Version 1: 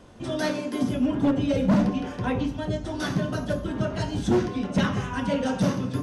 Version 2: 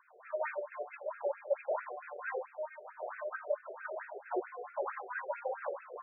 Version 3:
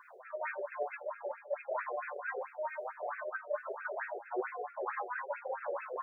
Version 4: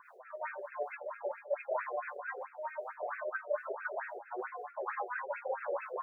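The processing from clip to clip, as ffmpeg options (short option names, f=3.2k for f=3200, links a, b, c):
-af "afftfilt=real='re*between(b*sr/1024,520*pow(1900/520,0.5+0.5*sin(2*PI*4.5*pts/sr))/1.41,520*pow(1900/520,0.5+0.5*sin(2*PI*4.5*pts/sr))*1.41)':imag='im*between(b*sr/1024,520*pow(1900/520,0.5+0.5*sin(2*PI*4.5*pts/sr))/1.41,520*pow(1900/520,0.5+0.5*sin(2*PI*4.5*pts/sr))*1.41)':win_size=1024:overlap=0.75,volume=-2.5dB"
-af "areverse,acompressor=threshold=-45dB:ratio=6,areverse,flanger=delay=6.8:depth=1.8:regen=28:speed=1.3:shape=sinusoidal,volume=13dB"
-filter_complex "[0:a]acrossover=split=1100[a][b];[a]aeval=exprs='val(0)*(1-0.7/2+0.7/2*cos(2*PI*4*n/s))':c=same[c];[b]aeval=exprs='val(0)*(1-0.7/2-0.7/2*cos(2*PI*4*n/s))':c=same[d];[c][d]amix=inputs=2:normalize=0,volume=3.5dB"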